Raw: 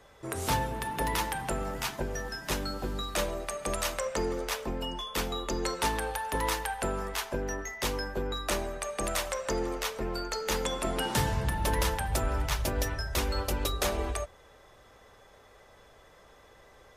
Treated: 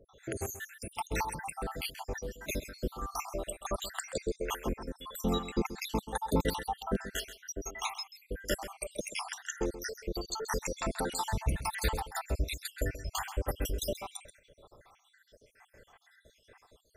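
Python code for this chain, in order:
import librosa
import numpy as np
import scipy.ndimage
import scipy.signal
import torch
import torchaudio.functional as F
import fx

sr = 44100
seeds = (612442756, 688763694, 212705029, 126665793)

y = fx.spec_dropout(x, sr, seeds[0], share_pct=76)
y = fx.peak_eq(y, sr, hz=200.0, db=11.5, octaves=1.3, at=(5.18, 7.18))
y = y + 10.0 ** (-13.0 / 20.0) * np.pad(y, (int(132 * sr / 1000.0), 0))[:len(y)]
y = y * librosa.db_to_amplitude(1.5)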